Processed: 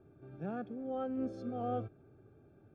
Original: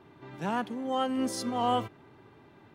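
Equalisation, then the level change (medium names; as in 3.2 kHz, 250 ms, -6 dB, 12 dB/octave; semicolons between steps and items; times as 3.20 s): boxcar filter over 45 samples; distance through air 82 m; peaking EQ 230 Hz -8 dB 1.8 oct; +2.0 dB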